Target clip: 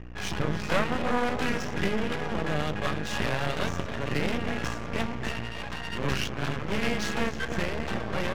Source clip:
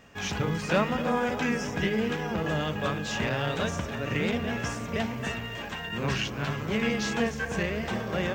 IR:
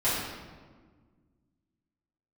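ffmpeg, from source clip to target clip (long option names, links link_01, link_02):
-filter_complex "[0:a]asplit=2[link_01][link_02];[link_02]aecho=0:1:285:0.168[link_03];[link_01][link_03]amix=inputs=2:normalize=0,aeval=exprs='val(0)+0.00891*(sin(2*PI*60*n/s)+sin(2*PI*2*60*n/s)/2+sin(2*PI*3*60*n/s)/3+sin(2*PI*4*60*n/s)/4+sin(2*PI*5*60*n/s)/5)':channel_layout=same,acontrast=44,aeval=exprs='max(val(0),0)':channel_layout=same,adynamicsmooth=sensitivity=7:basefreq=3300,volume=-2dB"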